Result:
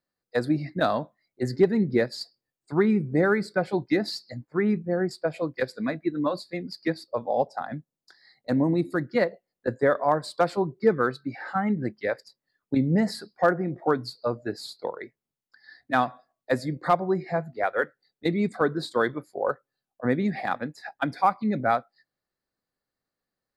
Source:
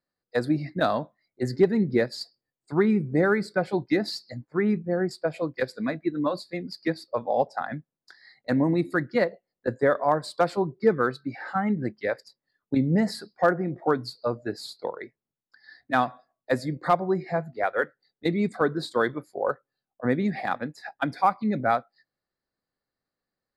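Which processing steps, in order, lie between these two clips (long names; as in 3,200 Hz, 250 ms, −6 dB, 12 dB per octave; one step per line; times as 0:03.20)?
0:07.04–0:09.12: parametric band 1,900 Hz −6 dB 1.3 octaves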